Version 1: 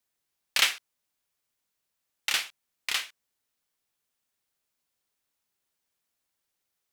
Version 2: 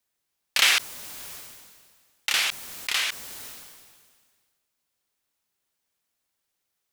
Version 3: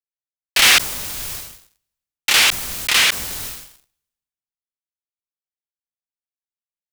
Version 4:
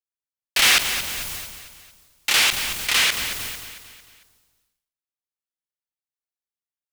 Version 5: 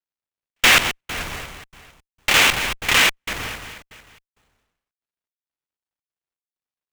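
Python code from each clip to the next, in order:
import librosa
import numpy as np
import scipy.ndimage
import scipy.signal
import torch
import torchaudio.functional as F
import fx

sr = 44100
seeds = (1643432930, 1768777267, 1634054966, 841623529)

y1 = fx.sustainer(x, sr, db_per_s=33.0)
y1 = y1 * 10.0 ** (2.0 / 20.0)
y2 = fx.low_shelf(y1, sr, hz=130.0, db=11.5)
y2 = fx.leveller(y2, sr, passes=5)
y2 = fx.band_widen(y2, sr, depth_pct=40)
y2 = y2 * 10.0 ** (-3.5 / 20.0)
y3 = fx.echo_feedback(y2, sr, ms=225, feedback_pct=46, wet_db=-10.0)
y3 = y3 * 10.0 ** (-4.0 / 20.0)
y4 = scipy.signal.medfilt(y3, 9)
y4 = fx.step_gate(y4, sr, bpm=165, pattern='xxxxxx.xxx..', floor_db=-60.0, edge_ms=4.5)
y4 = fx.running_max(y4, sr, window=3)
y4 = y4 * 10.0 ** (7.5 / 20.0)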